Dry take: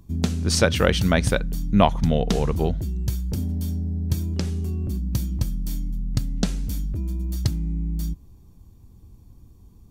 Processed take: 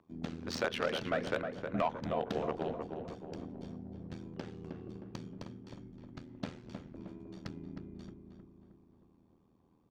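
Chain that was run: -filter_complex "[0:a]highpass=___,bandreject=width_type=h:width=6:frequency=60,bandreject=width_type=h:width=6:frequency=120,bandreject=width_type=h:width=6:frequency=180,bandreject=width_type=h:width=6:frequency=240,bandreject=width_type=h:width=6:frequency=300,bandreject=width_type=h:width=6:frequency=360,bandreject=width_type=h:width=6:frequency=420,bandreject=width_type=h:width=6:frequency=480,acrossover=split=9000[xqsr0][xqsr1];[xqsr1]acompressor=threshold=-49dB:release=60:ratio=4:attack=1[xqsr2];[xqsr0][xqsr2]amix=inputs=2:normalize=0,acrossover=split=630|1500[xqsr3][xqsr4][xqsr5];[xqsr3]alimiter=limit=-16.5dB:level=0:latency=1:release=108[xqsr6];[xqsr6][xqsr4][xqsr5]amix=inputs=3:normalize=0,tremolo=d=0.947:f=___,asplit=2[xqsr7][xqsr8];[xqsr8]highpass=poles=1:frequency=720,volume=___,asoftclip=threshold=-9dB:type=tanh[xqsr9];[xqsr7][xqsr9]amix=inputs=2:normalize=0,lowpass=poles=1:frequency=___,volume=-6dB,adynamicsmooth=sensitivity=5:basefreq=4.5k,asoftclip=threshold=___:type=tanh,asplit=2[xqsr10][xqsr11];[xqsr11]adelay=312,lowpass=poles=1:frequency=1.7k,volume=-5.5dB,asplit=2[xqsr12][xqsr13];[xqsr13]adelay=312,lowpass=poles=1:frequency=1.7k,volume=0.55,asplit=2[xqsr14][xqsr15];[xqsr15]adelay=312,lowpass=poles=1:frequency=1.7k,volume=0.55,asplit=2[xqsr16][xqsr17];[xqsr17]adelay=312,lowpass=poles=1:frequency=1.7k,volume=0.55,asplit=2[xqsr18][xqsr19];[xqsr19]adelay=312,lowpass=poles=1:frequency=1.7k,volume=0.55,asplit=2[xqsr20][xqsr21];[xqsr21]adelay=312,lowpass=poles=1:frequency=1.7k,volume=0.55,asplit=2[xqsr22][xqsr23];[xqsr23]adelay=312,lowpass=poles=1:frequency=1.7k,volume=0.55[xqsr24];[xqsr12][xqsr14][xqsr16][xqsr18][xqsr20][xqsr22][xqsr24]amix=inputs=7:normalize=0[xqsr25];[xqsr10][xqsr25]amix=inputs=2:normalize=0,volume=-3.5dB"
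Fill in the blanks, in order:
210, 81, 8dB, 1.4k, -19dB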